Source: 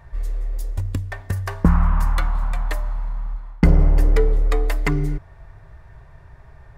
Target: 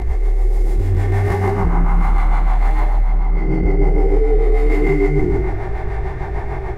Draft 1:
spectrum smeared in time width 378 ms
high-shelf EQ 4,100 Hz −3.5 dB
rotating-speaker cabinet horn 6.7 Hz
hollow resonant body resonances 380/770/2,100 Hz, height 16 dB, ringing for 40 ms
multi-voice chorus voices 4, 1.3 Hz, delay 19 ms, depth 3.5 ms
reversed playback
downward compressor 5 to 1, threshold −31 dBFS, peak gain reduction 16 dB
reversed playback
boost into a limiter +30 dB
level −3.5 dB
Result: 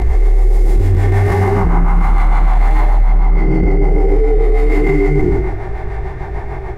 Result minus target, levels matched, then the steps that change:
downward compressor: peak gain reduction −7.5 dB
change: downward compressor 5 to 1, threshold −40.5 dBFS, peak gain reduction 23.5 dB

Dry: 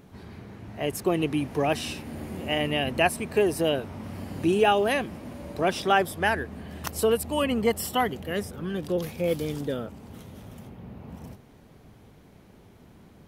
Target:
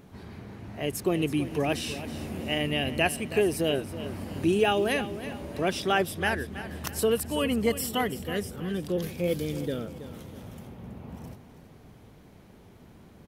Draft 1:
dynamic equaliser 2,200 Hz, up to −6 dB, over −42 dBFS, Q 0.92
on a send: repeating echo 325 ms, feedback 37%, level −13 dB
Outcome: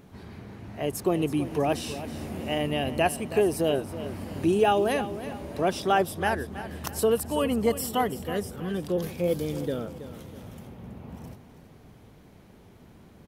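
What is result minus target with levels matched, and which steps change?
2,000 Hz band −4.0 dB
change: dynamic equaliser 900 Hz, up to −6 dB, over −42 dBFS, Q 0.92

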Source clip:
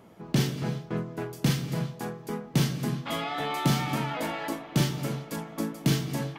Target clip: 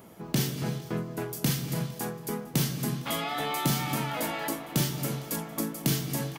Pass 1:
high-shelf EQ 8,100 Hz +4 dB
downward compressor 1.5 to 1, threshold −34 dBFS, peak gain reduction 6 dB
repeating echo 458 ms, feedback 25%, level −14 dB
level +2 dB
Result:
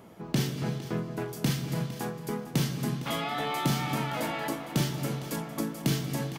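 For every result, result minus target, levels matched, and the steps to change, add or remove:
echo-to-direct +7 dB; 8,000 Hz band −4.0 dB
change: repeating echo 458 ms, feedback 25%, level −21 dB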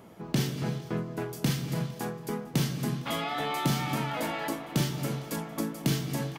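8,000 Hz band −4.0 dB
change: high-shelf EQ 8,100 Hz +15.5 dB

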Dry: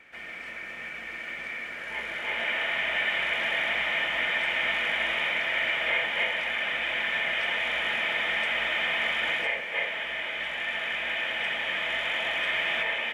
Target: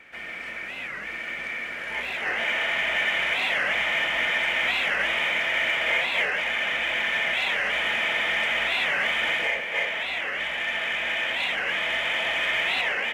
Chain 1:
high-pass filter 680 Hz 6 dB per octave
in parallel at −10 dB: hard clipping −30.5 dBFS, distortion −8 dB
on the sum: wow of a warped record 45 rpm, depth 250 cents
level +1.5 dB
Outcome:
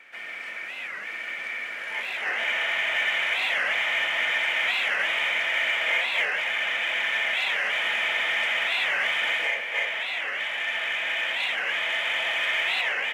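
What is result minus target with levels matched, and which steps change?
500 Hz band −3.0 dB
remove: high-pass filter 680 Hz 6 dB per octave

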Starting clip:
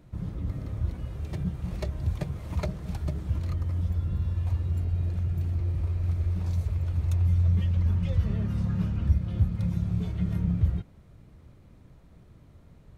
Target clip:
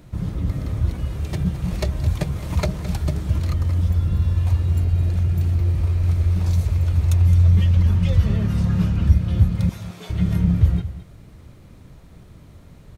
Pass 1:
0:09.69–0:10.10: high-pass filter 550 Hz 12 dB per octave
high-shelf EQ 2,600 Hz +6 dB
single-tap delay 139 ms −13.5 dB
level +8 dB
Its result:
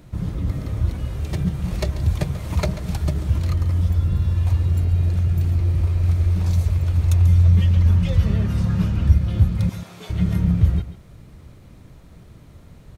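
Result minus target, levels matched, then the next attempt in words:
echo 76 ms early
0:09.69–0:10.10: high-pass filter 550 Hz 12 dB per octave
high-shelf EQ 2,600 Hz +6 dB
single-tap delay 215 ms −13.5 dB
level +8 dB

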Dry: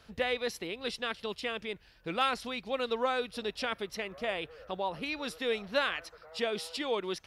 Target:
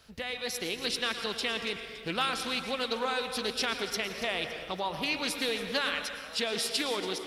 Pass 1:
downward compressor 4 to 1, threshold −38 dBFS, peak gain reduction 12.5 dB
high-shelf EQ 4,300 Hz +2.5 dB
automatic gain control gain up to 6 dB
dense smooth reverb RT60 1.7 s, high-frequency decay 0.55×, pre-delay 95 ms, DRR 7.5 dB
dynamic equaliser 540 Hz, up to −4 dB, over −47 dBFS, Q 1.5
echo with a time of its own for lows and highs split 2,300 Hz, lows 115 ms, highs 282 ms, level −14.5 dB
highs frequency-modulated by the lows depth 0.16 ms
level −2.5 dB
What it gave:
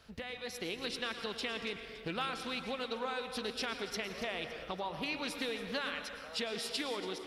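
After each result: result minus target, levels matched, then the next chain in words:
downward compressor: peak gain reduction +6 dB; 8,000 Hz band −3.0 dB
downward compressor 4 to 1, threshold −30 dBFS, peak gain reduction 6.5 dB
high-shelf EQ 4,300 Hz +2.5 dB
automatic gain control gain up to 6 dB
dense smooth reverb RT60 1.7 s, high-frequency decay 0.55×, pre-delay 95 ms, DRR 7.5 dB
dynamic equaliser 540 Hz, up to −4 dB, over −47 dBFS, Q 1.5
echo with a time of its own for lows and highs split 2,300 Hz, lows 115 ms, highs 282 ms, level −14.5 dB
highs frequency-modulated by the lows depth 0.16 ms
level −2.5 dB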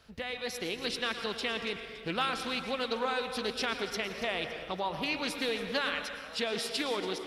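8,000 Hz band −4.0 dB
downward compressor 4 to 1, threshold −30 dBFS, peak gain reduction 6.5 dB
high-shelf EQ 4,300 Hz +10.5 dB
automatic gain control gain up to 6 dB
dense smooth reverb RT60 1.7 s, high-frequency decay 0.55×, pre-delay 95 ms, DRR 7.5 dB
dynamic equaliser 540 Hz, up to −4 dB, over −47 dBFS, Q 1.5
echo with a time of its own for lows and highs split 2,300 Hz, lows 115 ms, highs 282 ms, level −14.5 dB
highs frequency-modulated by the lows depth 0.16 ms
level −2.5 dB

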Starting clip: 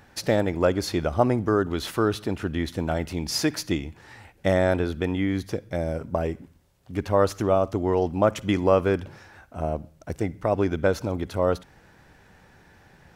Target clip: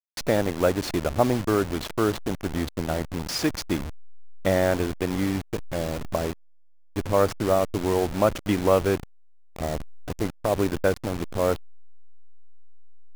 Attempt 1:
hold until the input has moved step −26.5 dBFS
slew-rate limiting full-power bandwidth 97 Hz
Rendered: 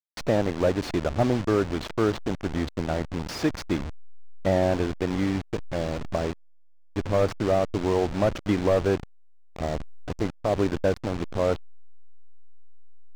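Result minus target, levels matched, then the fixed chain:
slew-rate limiting: distortion +19 dB
hold until the input has moved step −26.5 dBFS
slew-rate limiting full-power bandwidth 356.5 Hz

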